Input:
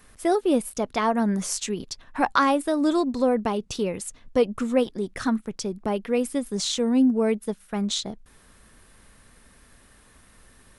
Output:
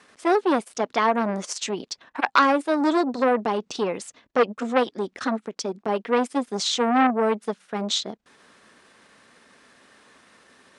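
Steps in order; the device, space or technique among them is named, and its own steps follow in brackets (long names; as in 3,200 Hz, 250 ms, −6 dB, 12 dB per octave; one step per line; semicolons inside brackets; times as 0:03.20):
low-pass filter 10,000 Hz 24 dB per octave
0:06.01–0:07.07: dynamic equaliser 290 Hz, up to +3 dB, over −25 dBFS, Q 0.79
public-address speaker with an overloaded transformer (saturating transformer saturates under 1,500 Hz; band-pass filter 270–6,200 Hz)
level +4.5 dB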